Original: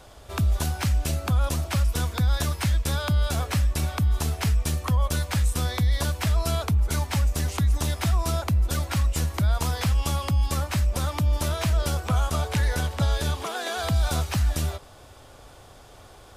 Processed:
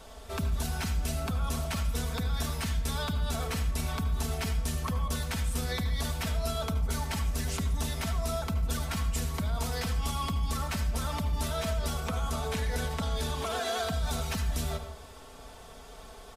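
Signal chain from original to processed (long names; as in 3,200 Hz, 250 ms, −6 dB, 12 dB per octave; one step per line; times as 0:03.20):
comb filter 4.5 ms, depth 75%
brickwall limiter −22 dBFS, peak gain reduction 10.5 dB
convolution reverb RT60 0.55 s, pre-delay 70 ms, DRR 8 dB
level −2 dB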